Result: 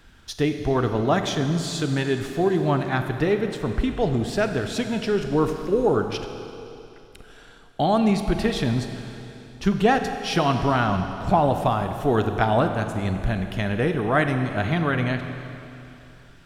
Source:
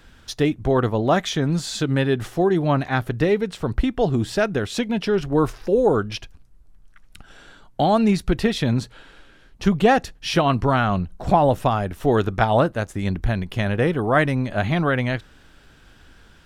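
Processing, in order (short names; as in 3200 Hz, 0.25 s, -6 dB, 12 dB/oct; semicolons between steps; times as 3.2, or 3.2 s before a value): notch 530 Hz, Q 12; Schroeder reverb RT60 2.9 s, combs from 32 ms, DRR 6.5 dB; gain -2.5 dB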